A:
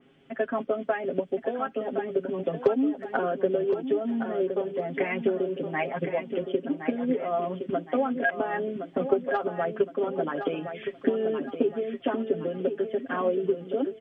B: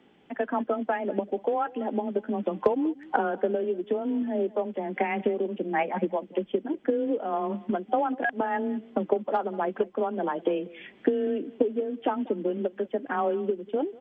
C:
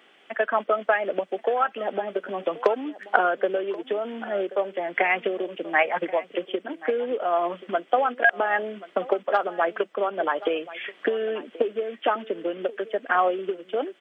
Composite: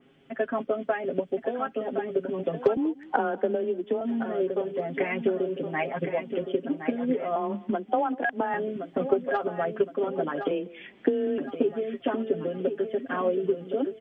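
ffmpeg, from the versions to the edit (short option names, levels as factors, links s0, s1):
-filter_complex "[1:a]asplit=3[s0][s1][s2];[0:a]asplit=4[s3][s4][s5][s6];[s3]atrim=end=2.772[s7];[s0]atrim=start=2.768:end=4.012[s8];[s4]atrim=start=4.008:end=7.362[s9];[s1]atrim=start=7.358:end=8.542[s10];[s5]atrim=start=8.538:end=10.512[s11];[s2]atrim=start=10.508:end=11.382[s12];[s6]atrim=start=11.378[s13];[s7][s8]acrossfade=d=0.004:c1=hsin:c2=hsin[s14];[s14][s9]acrossfade=d=0.004:c1=hsin:c2=hsin[s15];[s15][s10]acrossfade=d=0.004:c1=hsin:c2=hsin[s16];[s16][s11]acrossfade=d=0.004:c1=hsin:c2=hsin[s17];[s17][s12]acrossfade=d=0.004:c1=hsin:c2=hsin[s18];[s18][s13]acrossfade=d=0.004:c1=hsin:c2=hsin"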